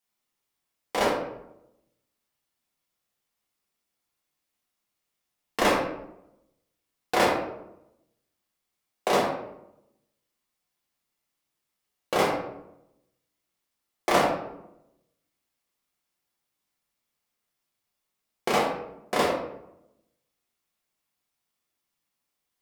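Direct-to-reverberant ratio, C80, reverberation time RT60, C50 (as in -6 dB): -4.5 dB, 6.5 dB, 0.85 s, 4.0 dB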